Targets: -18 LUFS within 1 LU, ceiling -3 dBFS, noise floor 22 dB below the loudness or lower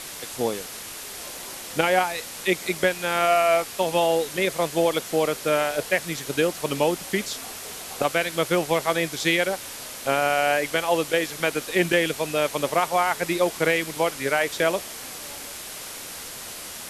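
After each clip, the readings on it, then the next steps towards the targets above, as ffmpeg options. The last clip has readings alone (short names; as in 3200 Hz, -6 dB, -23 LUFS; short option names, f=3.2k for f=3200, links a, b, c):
noise floor -37 dBFS; noise floor target -47 dBFS; loudness -24.5 LUFS; peak -5.5 dBFS; loudness target -18.0 LUFS
-> -af "afftdn=nr=10:nf=-37"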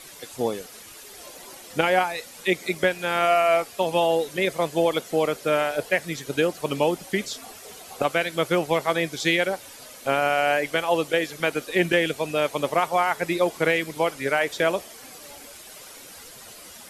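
noise floor -44 dBFS; noise floor target -46 dBFS
-> -af "afftdn=nr=6:nf=-44"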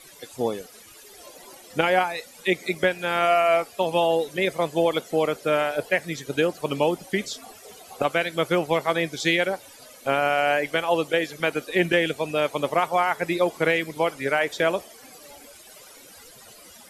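noise floor -48 dBFS; loudness -24.0 LUFS; peak -6.0 dBFS; loudness target -18.0 LUFS
-> -af "volume=6dB,alimiter=limit=-3dB:level=0:latency=1"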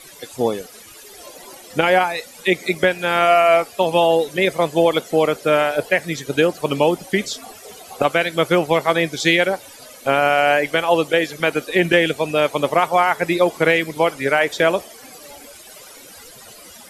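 loudness -18.0 LUFS; peak -3.0 dBFS; noise floor -42 dBFS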